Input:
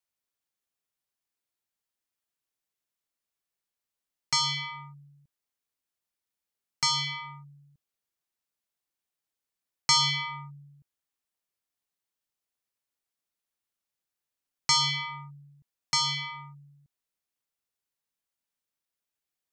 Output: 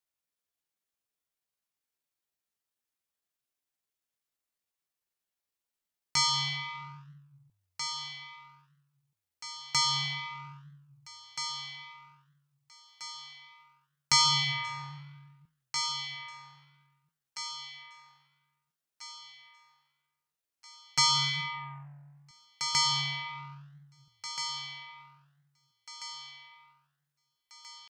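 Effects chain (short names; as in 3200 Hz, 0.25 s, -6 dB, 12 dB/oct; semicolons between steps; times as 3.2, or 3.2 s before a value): flange 1.2 Hz, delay 8.8 ms, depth 8.1 ms, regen -89%; thinning echo 1.143 s, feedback 45%, high-pass 320 Hz, level -9 dB; tempo 0.7×; gain +3 dB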